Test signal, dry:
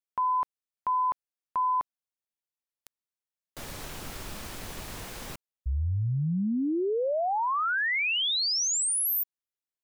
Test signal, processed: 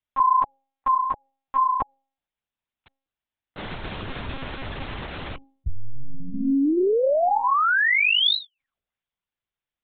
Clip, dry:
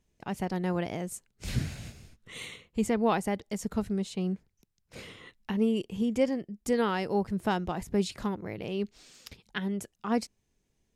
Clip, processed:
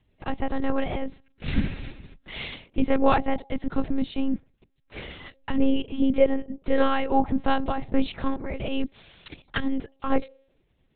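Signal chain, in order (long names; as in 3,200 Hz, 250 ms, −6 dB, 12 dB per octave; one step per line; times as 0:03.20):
hum removal 164.1 Hz, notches 5
frequency shifter +19 Hz
one-pitch LPC vocoder at 8 kHz 270 Hz
level +7.5 dB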